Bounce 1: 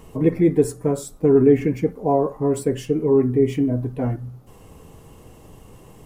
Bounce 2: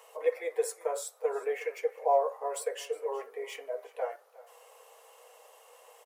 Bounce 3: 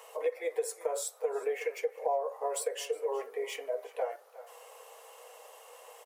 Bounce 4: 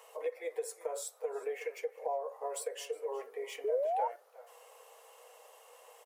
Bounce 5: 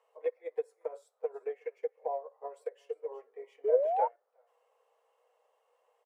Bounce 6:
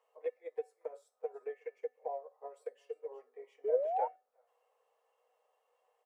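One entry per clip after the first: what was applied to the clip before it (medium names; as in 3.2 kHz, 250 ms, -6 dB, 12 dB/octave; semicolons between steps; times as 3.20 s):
Chebyshev high-pass 480 Hz, order 6; delay 362 ms -19.5 dB; trim -3 dB
dynamic bell 1.4 kHz, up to -4 dB, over -49 dBFS, Q 1; compression 5:1, threshold -32 dBFS, peak gain reduction 10.5 dB; trim +4 dB
painted sound rise, 3.64–4.08 s, 400–960 Hz -27 dBFS; trim -5 dB
low-pass 1.5 kHz 6 dB/octave; upward expansion 2.5:1, over -44 dBFS; trim +9 dB
dynamic bell 1.1 kHz, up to -4 dB, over -52 dBFS, Q 2.4; feedback comb 250 Hz, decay 0.29 s, harmonics odd, mix 70%; trim +5.5 dB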